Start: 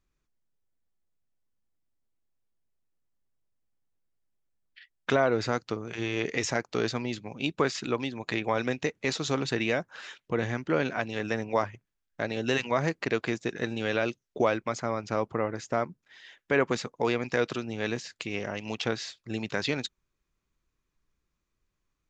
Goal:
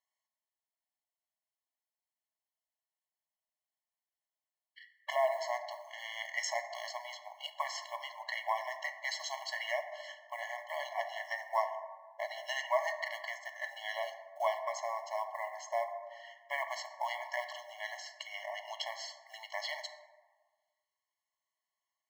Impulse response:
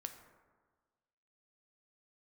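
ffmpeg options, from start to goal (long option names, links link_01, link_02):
-filter_complex "[0:a]acrusher=bits=8:mode=log:mix=0:aa=0.000001,bandreject=frequency=57.07:width_type=h:width=4,bandreject=frequency=114.14:width_type=h:width=4,bandreject=frequency=171.21:width_type=h:width=4,bandreject=frequency=228.28:width_type=h:width=4[link_01];[1:a]atrim=start_sample=2205[link_02];[link_01][link_02]afir=irnorm=-1:irlink=0,afftfilt=real='re*eq(mod(floor(b*sr/1024/560),2),1)':imag='im*eq(mod(floor(b*sr/1024/560),2),1)':win_size=1024:overlap=0.75,volume=2dB"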